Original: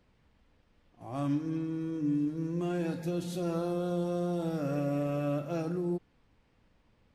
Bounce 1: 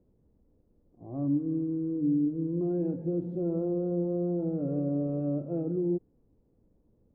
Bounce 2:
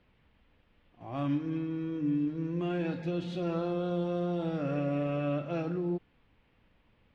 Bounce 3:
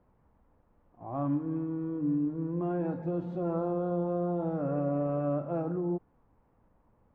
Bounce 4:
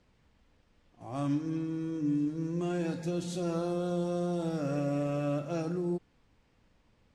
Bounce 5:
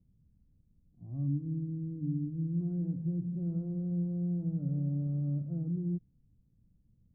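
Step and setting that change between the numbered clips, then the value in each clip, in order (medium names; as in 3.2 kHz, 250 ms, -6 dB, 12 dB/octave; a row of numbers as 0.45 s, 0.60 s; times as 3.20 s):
resonant low-pass, frequency: 410 Hz, 3 kHz, 1 kHz, 7.7 kHz, 160 Hz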